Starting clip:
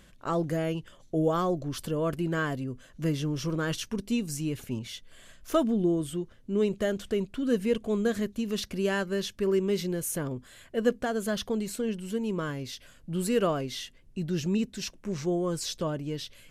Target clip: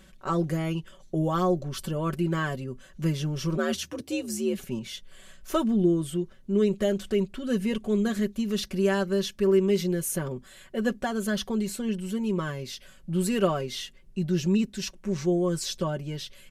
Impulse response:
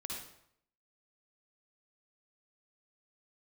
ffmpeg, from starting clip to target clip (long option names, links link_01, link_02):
-filter_complex "[0:a]asettb=1/sr,asplit=3[link_01][link_02][link_03];[link_01]atrim=end=3.574[link_04];[link_02]atrim=start=3.57:end=4.57,asetpts=PTS-STARTPTS,afade=type=in:duration=0.004:curve=qsin,afade=type=out:start_time=0.996:duration=0.004:curve=qsin,afreqshift=69[link_05];[link_03]atrim=start=4.566[link_06];[link_04][link_05]acrossfade=duration=0.004:curve1=hsin:curve2=qsin[link_07];[link_07][link_06]acrossfade=duration=0.004:curve1=qsin:curve2=hsin,aecho=1:1:5.3:0.71"